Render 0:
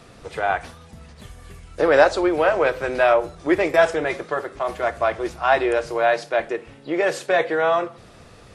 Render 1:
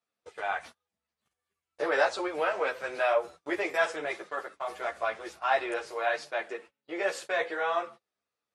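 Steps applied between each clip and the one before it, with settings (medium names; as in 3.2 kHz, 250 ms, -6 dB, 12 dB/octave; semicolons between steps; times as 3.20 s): gate -34 dBFS, range -31 dB; high-pass 750 Hz 6 dB/octave; three-phase chorus; trim -3.5 dB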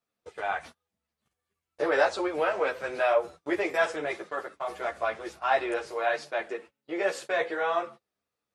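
bass shelf 390 Hz +7.5 dB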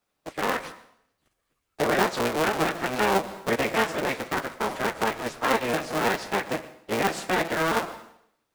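cycle switcher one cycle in 3, inverted; plate-style reverb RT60 0.69 s, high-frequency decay 1×, pre-delay 95 ms, DRR 18.5 dB; compression 2:1, threshold -33 dBFS, peak gain reduction 8.5 dB; trim +8 dB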